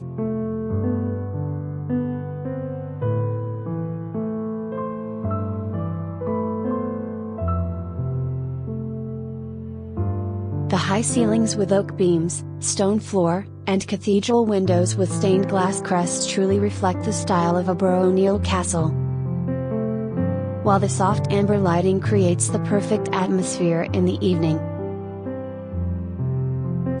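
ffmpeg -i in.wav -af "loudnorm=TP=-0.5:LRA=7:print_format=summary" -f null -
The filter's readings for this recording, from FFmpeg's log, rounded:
Input Integrated:    -22.8 LUFS
Input True Peak:      -5.4 dBTP
Input LRA:             6.6 LU
Input Threshold:     -32.8 LUFS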